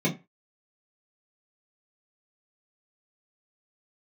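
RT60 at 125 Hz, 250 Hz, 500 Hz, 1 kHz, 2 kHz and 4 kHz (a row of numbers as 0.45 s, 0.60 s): 0.25 s, 0.25 s, 0.25 s, 0.25 s, 0.25 s, 0.20 s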